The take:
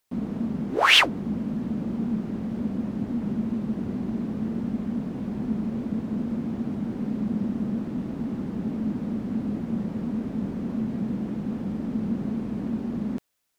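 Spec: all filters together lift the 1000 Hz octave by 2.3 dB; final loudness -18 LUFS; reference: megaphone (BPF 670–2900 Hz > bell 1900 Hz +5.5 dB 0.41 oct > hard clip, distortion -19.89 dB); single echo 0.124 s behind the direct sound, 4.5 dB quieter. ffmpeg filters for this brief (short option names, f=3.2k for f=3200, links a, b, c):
-af "highpass=670,lowpass=2.9k,equalizer=f=1k:t=o:g=3.5,equalizer=f=1.9k:t=o:w=0.41:g=5.5,aecho=1:1:124:0.596,asoftclip=type=hard:threshold=-9.5dB,volume=0.5dB"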